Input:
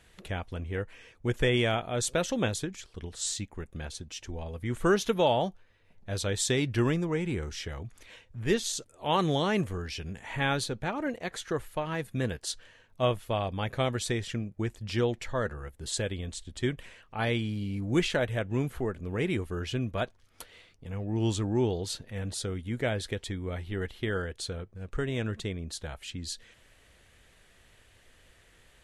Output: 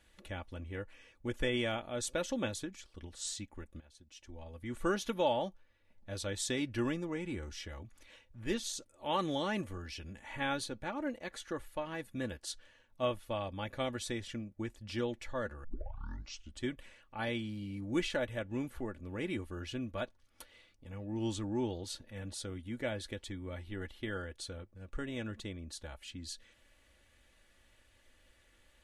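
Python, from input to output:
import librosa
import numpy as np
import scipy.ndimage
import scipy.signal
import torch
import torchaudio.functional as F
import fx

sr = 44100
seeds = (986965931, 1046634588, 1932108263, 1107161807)

y = fx.edit(x, sr, fx.fade_in_from(start_s=3.8, length_s=0.98, floor_db=-20.0),
    fx.tape_start(start_s=15.64, length_s=0.96), tone=tone)
y = fx.notch(y, sr, hz=7300.0, q=28.0)
y = y + 0.53 * np.pad(y, (int(3.5 * sr / 1000.0), 0))[:len(y)]
y = y * 10.0 ** (-8.0 / 20.0)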